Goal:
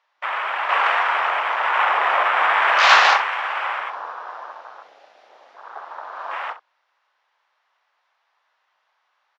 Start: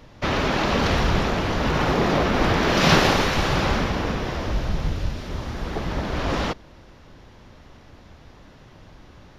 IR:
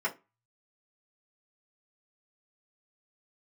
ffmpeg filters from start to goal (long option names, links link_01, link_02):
-filter_complex "[0:a]aemphasis=mode=reproduction:type=75fm,afwtdn=0.0316,highpass=frequency=880:width=0.5412,highpass=frequency=880:width=1.3066,asettb=1/sr,asplit=3[link_01][link_02][link_03];[link_01]atrim=end=0.694[link_04];[link_02]atrim=start=0.69:end=3.18,asetpts=PTS-STARTPTS,afade=type=in:duration=0.004:curve=qsin,afade=type=out:start_time=2.486:duration=0.004:curve=qsin,acontrast=48[link_05];[link_03]atrim=start=3.176[link_06];[link_04][link_05]acrossfade=duration=0.004:curve1=hsin:curve2=qsin[link_07];[link_07][link_06]acrossfade=duration=0.004:curve1=qsin:curve2=hsin,aecho=1:1:38|66:0.178|0.188,volume=4dB"